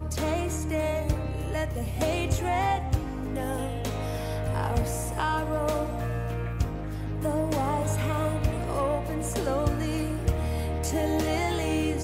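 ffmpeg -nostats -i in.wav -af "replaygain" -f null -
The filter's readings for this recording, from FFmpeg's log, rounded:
track_gain = +11.2 dB
track_peak = 0.172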